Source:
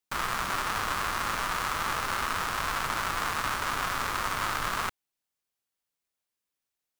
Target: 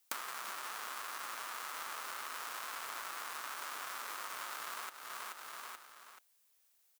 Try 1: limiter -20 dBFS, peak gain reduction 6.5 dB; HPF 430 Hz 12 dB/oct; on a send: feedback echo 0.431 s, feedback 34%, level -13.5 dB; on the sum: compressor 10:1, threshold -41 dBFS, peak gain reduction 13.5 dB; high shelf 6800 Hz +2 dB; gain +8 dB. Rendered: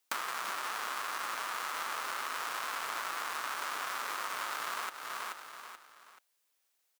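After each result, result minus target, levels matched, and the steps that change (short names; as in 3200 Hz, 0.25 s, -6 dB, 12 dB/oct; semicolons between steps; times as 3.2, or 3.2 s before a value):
compressor: peak gain reduction -7 dB; 8000 Hz band -3.0 dB
change: compressor 10:1, threshold -49 dBFS, peak gain reduction 20.5 dB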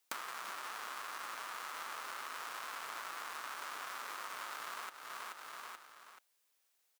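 8000 Hz band -2.5 dB
change: high shelf 6800 Hz +9 dB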